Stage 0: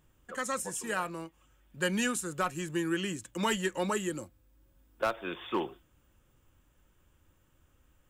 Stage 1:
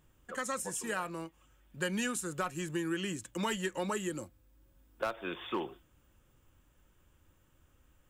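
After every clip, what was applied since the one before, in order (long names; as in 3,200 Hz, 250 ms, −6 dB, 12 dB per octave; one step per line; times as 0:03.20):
downward compressor 2 to 1, threshold −33 dBFS, peak gain reduction 5 dB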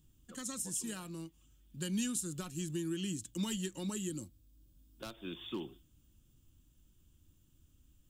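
flat-topped bell 1,000 Hz −15.5 dB 2.8 octaves
level +1 dB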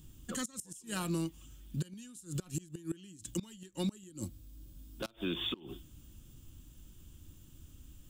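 gate with flip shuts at −30 dBFS, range −27 dB
brickwall limiter −38 dBFS, peak gain reduction 10 dB
level +12 dB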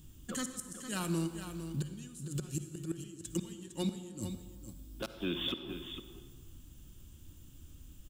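single-tap delay 456 ms −9.5 dB
on a send at −10 dB: convolution reverb RT60 1.6 s, pre-delay 47 ms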